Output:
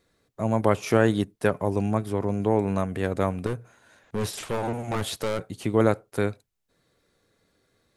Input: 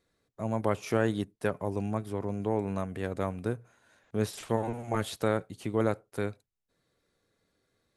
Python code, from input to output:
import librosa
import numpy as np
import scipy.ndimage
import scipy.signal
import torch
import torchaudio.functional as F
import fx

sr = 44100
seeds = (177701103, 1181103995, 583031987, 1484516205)

y = fx.clip_hard(x, sr, threshold_db=-30.0, at=(3.46, 5.52))
y = F.gain(torch.from_numpy(y), 7.0).numpy()